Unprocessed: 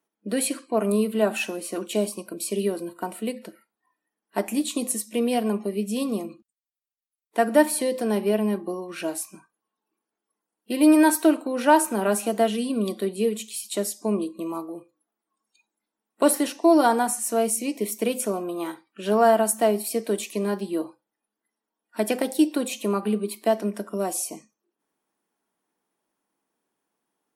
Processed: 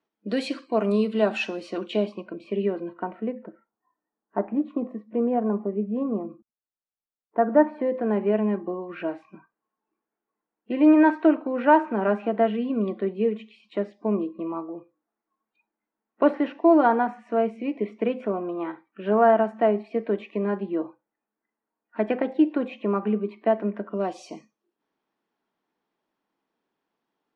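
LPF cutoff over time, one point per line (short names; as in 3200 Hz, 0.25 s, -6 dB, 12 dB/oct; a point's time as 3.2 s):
LPF 24 dB/oct
1.6 s 5000 Hz
2.42 s 2500 Hz
2.92 s 2500 Hz
3.46 s 1400 Hz
7.42 s 1400 Hz
8.38 s 2300 Hz
23.84 s 2300 Hz
24.28 s 4700 Hz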